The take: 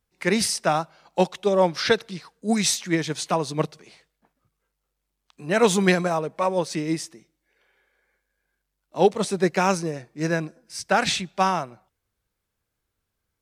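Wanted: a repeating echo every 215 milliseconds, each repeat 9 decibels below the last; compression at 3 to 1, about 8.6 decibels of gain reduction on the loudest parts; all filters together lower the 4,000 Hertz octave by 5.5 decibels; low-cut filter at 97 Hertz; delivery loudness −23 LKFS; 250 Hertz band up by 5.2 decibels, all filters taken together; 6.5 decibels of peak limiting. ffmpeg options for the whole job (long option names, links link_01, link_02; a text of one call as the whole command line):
ffmpeg -i in.wav -af "highpass=97,equalizer=frequency=250:width_type=o:gain=8,equalizer=frequency=4000:width_type=o:gain=-7,acompressor=threshold=-22dB:ratio=3,alimiter=limit=-16.5dB:level=0:latency=1,aecho=1:1:215|430|645|860:0.355|0.124|0.0435|0.0152,volume=5.5dB" out.wav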